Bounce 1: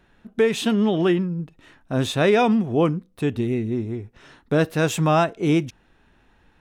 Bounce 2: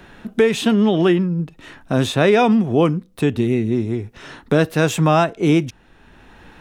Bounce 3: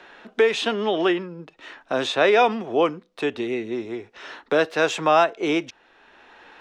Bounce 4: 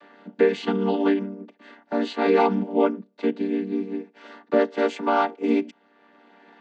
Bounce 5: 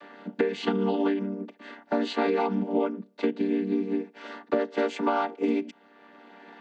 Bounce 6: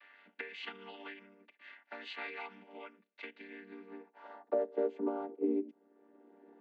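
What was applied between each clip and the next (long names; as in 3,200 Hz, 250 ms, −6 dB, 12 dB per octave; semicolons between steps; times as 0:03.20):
multiband upward and downward compressor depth 40%; level +4 dB
three-way crossover with the lows and the highs turned down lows −24 dB, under 360 Hz, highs −23 dB, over 6,500 Hz
channel vocoder with a chord as carrier minor triad, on G3
downward compressor 12 to 1, threshold −25 dBFS, peak gain reduction 13 dB; level +3.5 dB
band-pass filter sweep 2,300 Hz → 360 Hz, 0:03.32–0:05.04; level −3.5 dB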